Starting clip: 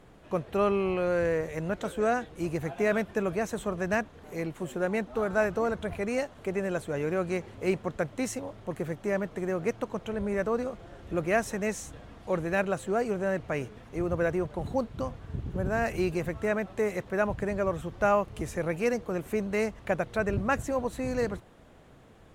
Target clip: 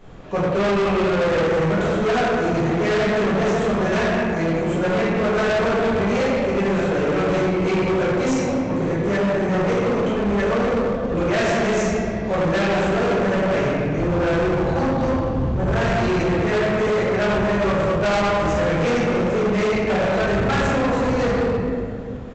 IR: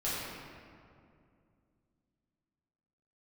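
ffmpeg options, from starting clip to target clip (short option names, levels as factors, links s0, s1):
-filter_complex "[1:a]atrim=start_sample=2205[s0];[0:a][s0]afir=irnorm=-1:irlink=0,aresample=16000,volume=15.8,asoftclip=hard,volume=0.0631,aresample=44100,acontrast=74"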